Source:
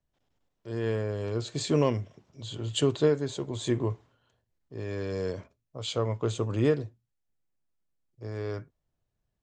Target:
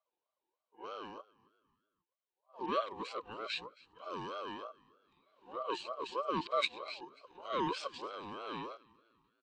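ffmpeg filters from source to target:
-filter_complex "[0:a]areverse,acrossover=split=420[a][b];[a]acompressor=threshold=-39dB:ratio=6[c];[c][b]amix=inputs=2:normalize=0,asplit=3[d][e][f];[d]bandpass=f=270:t=q:w=8,volume=0dB[g];[e]bandpass=f=2.29k:t=q:w=8,volume=-6dB[h];[f]bandpass=f=3.01k:t=q:w=8,volume=-9dB[i];[g][h][i]amix=inputs=3:normalize=0,asplit=4[j][k][l][m];[k]adelay=269,afreqshift=57,volume=-23.5dB[n];[l]adelay=538,afreqshift=114,volume=-30.8dB[o];[m]adelay=807,afreqshift=171,volume=-38.2dB[p];[j][n][o][p]amix=inputs=4:normalize=0,aeval=exprs='val(0)*sin(2*PI*760*n/s+760*0.2/3.2*sin(2*PI*3.2*n/s))':c=same,volume=11.5dB"

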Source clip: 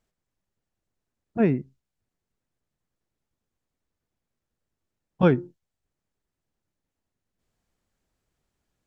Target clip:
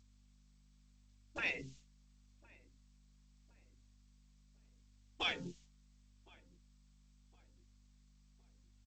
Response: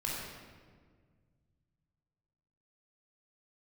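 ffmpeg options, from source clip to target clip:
-filter_complex "[0:a]agate=range=-33dB:threshold=-51dB:ratio=3:detection=peak,crystalizer=i=2:c=0,alimiter=level_in=1dB:limit=-24dB:level=0:latency=1:release=163,volume=-1dB,afftfilt=real='re*lt(hypot(re,im),0.0398)':imag='im*lt(hypot(re,im),0.0398)':win_size=1024:overlap=0.75,aeval=exprs='val(0)+0.000224*(sin(2*PI*50*n/s)+sin(2*PI*2*50*n/s)/2+sin(2*PI*3*50*n/s)/3+sin(2*PI*4*50*n/s)/4+sin(2*PI*5*50*n/s)/5)':c=same,highshelf=f=2k:t=q:w=1.5:g=10,asplit=2[a][b];[b]adelay=1062,lowpass=f=1.3k:p=1,volume=-23dB,asplit=2[c][d];[d]adelay=1062,lowpass=f=1.3k:p=1,volume=0.47,asplit=2[e][f];[f]adelay=1062,lowpass=f=1.3k:p=1,volume=0.47[g];[c][e][g]amix=inputs=3:normalize=0[h];[a][h]amix=inputs=2:normalize=0,flanger=delay=3.2:depth=2.1:regen=-36:speed=0.79:shape=triangular,acontrast=62,volume=4.5dB" -ar 16000 -c:a g722

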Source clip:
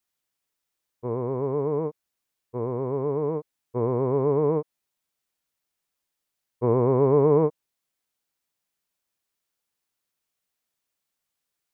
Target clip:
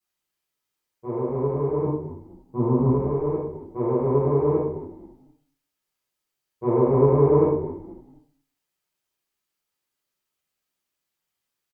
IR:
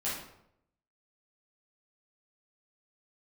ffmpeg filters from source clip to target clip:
-filter_complex "[0:a]asettb=1/sr,asplit=3[a][b][c];[a]atrim=end=1.844[d];[b]atrim=start=1.84:end=2.89,asetpts=PTS-STARTPTS,afade=t=in:d=0.004:c=qsin,afade=t=out:st=1.046:d=0.004:c=qsin,equalizer=f=125:t=o:w=1:g=9,equalizer=f=250:t=o:w=1:g=11,equalizer=f=500:t=o:w=1:g=-4,equalizer=f=1k:t=o:w=1:g=6,equalizer=f=2k:t=o:w=1:g=-6[e];[c]atrim=start=2.886[f];[d][e]acrossfade=d=0.004:c1=hsin:c2=qsin[g];[g][f]acrossfade=d=0.004:c1=qsin:c2=hsin,asplit=4[h][i][j][k];[i]adelay=230,afreqshift=-58,volume=-15dB[l];[j]adelay=460,afreqshift=-116,volume=-24.4dB[m];[k]adelay=690,afreqshift=-174,volume=-33.7dB[n];[h][l][m][n]amix=inputs=4:normalize=0[o];[1:a]atrim=start_sample=2205,asetrate=70560,aresample=44100[p];[o][p]afir=irnorm=-1:irlink=0"

